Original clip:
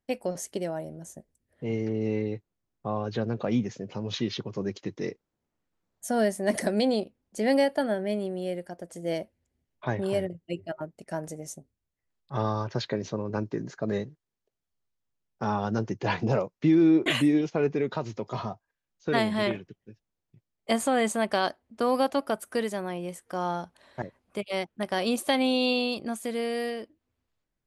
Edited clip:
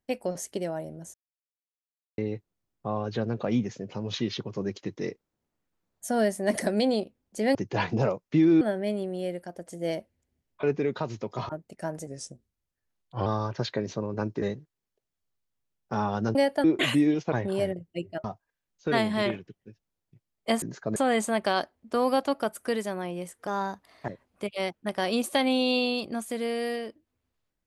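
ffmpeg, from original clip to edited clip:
-filter_complex "[0:a]asplit=18[s0][s1][s2][s3][s4][s5][s6][s7][s8][s9][s10][s11][s12][s13][s14][s15][s16][s17];[s0]atrim=end=1.14,asetpts=PTS-STARTPTS,afade=t=out:st=1.136:d=0.004:c=hsin[s18];[s1]atrim=start=1.14:end=2.18,asetpts=PTS-STARTPTS,volume=0[s19];[s2]atrim=start=2.18:end=7.552,asetpts=PTS-STARTPTS,afade=t=in:d=0.004:c=hsin[s20];[s3]atrim=start=15.848:end=16.912[s21];[s4]atrim=start=7.838:end=9.862[s22];[s5]atrim=start=17.588:end=18.452[s23];[s6]atrim=start=10.778:end=11.364[s24];[s7]atrim=start=11.36:end=12.42,asetpts=PTS-STARTPTS,asetrate=39249,aresample=44100[s25];[s8]atrim=start=12.416:end=13.582[s26];[s9]atrim=start=13.918:end=15.852[s27];[s10]atrim=start=7.548:end=7.842[s28];[s11]atrim=start=16.908:end=17.592[s29];[s12]atrim=start=9.858:end=10.782[s30];[s13]atrim=start=18.448:end=20.832[s31];[s14]atrim=start=13.578:end=13.922[s32];[s15]atrim=start=20.828:end=23.344[s33];[s16]atrim=start=23.34:end=24,asetpts=PTS-STARTPTS,asetrate=49392,aresample=44100,atrim=end_sample=25987,asetpts=PTS-STARTPTS[s34];[s17]atrim=start=23.996[s35];[s18][s19][s20]concat=n=3:v=0:a=1[s36];[s36][s21]acrossfade=d=0.004:c1=hsin:c2=hsin[s37];[s37][s22]acrossfade=d=0.004:c1=hsin:c2=hsin[s38];[s38][s23]acrossfade=d=0.004:c1=hsin:c2=hsin[s39];[s39][s24]acrossfade=d=0.004:c1=hsin:c2=hsin[s40];[s40][s25]acrossfade=d=0.004:c1=hsin:c2=hsin[s41];[s41][s26]acrossfade=d=0.004:c1=hsin:c2=hsin[s42];[s42][s27]acrossfade=d=0.004:c1=hsin:c2=hsin[s43];[s43][s28]acrossfade=d=0.004:c1=hsin:c2=hsin[s44];[s44][s29]acrossfade=d=0.004:c1=hsin:c2=hsin[s45];[s45][s30]acrossfade=d=0.004:c1=hsin:c2=hsin[s46];[s46][s31]acrossfade=d=0.004:c1=hsin:c2=hsin[s47];[s47][s32]acrossfade=d=0.004:c1=hsin:c2=hsin[s48];[s48][s33]acrossfade=d=0.004:c1=hsin:c2=hsin[s49];[s49][s34]acrossfade=d=0.004:c1=hsin:c2=hsin[s50];[s50][s35]acrossfade=d=0.004:c1=hsin:c2=hsin"

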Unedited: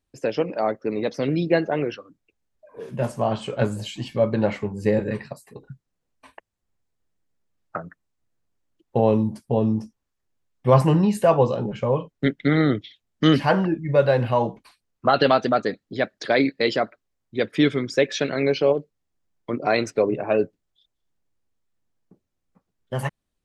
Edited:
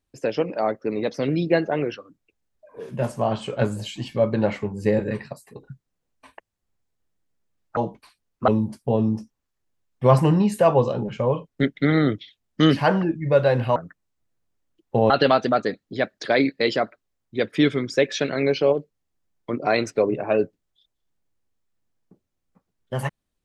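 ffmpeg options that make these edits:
-filter_complex "[0:a]asplit=5[s0][s1][s2][s3][s4];[s0]atrim=end=7.772[s5];[s1]atrim=start=14.388:end=15.102[s6];[s2]atrim=start=9.108:end=14.392[s7];[s3]atrim=start=7.768:end=9.112[s8];[s4]atrim=start=15.098[s9];[s5][s6]acrossfade=d=0.004:c1=hsin:c2=hsin[s10];[s10][s7]acrossfade=d=0.004:c1=hsin:c2=hsin[s11];[s11][s8]acrossfade=d=0.004:c1=hsin:c2=hsin[s12];[s12][s9]acrossfade=d=0.004:c1=hsin:c2=hsin"

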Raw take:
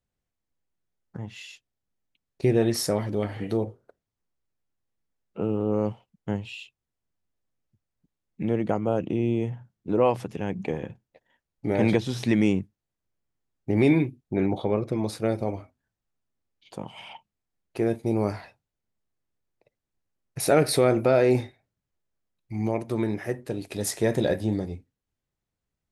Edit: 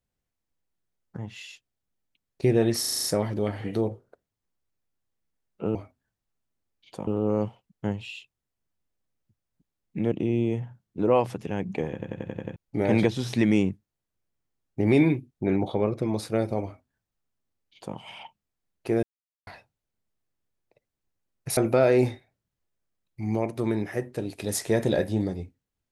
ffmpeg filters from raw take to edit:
-filter_complex "[0:a]asplit=20[s0][s1][s2][s3][s4][s5][s6][s7][s8][s9][s10][s11][s12][s13][s14][s15][s16][s17][s18][s19];[s0]atrim=end=2.842[s20];[s1]atrim=start=2.798:end=2.842[s21];[s2]atrim=start=2.798:end=2.842[s22];[s3]atrim=start=2.798:end=2.842[s23];[s4]atrim=start=2.798:end=2.842[s24];[s5]atrim=start=2.798:end=2.842[s25];[s6]atrim=start=2.798:end=5.512[s26];[s7]atrim=start=15.538:end=16.862[s27];[s8]atrim=start=5.508:end=8.562[s28];[s9]atrim=start=9.018:end=10.922[s29];[s10]atrim=start=10.828:end=10.922[s30];[s11]atrim=start=10.828:end=10.922[s31];[s12]atrim=start=10.828:end=10.922[s32];[s13]atrim=start=10.828:end=10.922[s33];[s14]atrim=start=10.828:end=10.922[s34];[s15]atrim=start=10.828:end=10.922[s35];[s16]atrim=start=11.458:end=17.93,asetpts=PTS-STARTPTS,afade=t=out:st=6.468:d=0.004:c=hsin[s36];[s17]atrim=start=17.93:end=18.37,asetpts=PTS-STARTPTS,volume=0[s37];[s18]atrim=start=18.37:end=20.472,asetpts=PTS-STARTPTS,afade=t=in:d=0.004:c=hsin[s38];[s19]atrim=start=20.888[s39];[s20][s21]acrossfade=d=0.004:c1=hsin:c2=hsin[s40];[s40][s22]acrossfade=d=0.004:c1=hsin:c2=hsin[s41];[s41][s23]acrossfade=d=0.004:c1=hsin:c2=hsin[s42];[s42][s24]acrossfade=d=0.004:c1=hsin:c2=hsin[s43];[s43][s25]acrossfade=d=0.004:c1=hsin:c2=hsin[s44];[s44][s26]acrossfade=d=0.004:c1=hsin:c2=hsin[s45];[s45][s27]acrossfade=d=0.004:c1=hsin:c2=hsin[s46];[s46][s28]acrossfade=d=0.004:c1=hsin:c2=hsin[s47];[s47][s29]acrossfade=d=0.004:c1=hsin:c2=hsin[s48];[s48][s30]acrossfade=d=0.004:c1=hsin:c2=hsin[s49];[s49][s31]acrossfade=d=0.004:c1=hsin:c2=hsin[s50];[s50][s32]acrossfade=d=0.004:c1=hsin:c2=hsin[s51];[s51][s33]acrossfade=d=0.004:c1=hsin:c2=hsin[s52];[s52][s34]acrossfade=d=0.004:c1=hsin:c2=hsin[s53];[s53][s35]acrossfade=d=0.004:c1=hsin:c2=hsin[s54];[s36][s37][s38]concat=n=3:v=0:a=1[s55];[s54][s55]acrossfade=d=0.004:c1=hsin:c2=hsin[s56];[s56][s39]acrossfade=d=0.004:c1=hsin:c2=hsin"

